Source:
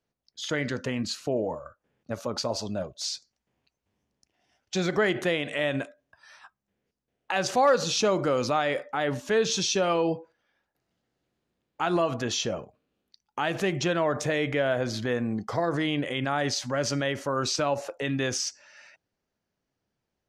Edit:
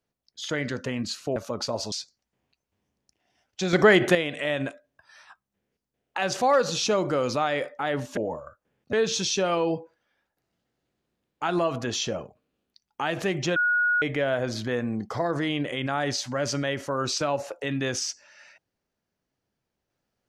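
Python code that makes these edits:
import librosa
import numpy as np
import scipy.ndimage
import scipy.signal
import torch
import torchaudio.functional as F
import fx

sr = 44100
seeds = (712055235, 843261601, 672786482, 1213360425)

y = fx.edit(x, sr, fx.move(start_s=1.36, length_s=0.76, to_s=9.31),
    fx.cut(start_s=2.68, length_s=0.38),
    fx.clip_gain(start_s=4.87, length_s=0.42, db=7.5),
    fx.bleep(start_s=13.94, length_s=0.46, hz=1450.0, db=-19.5), tone=tone)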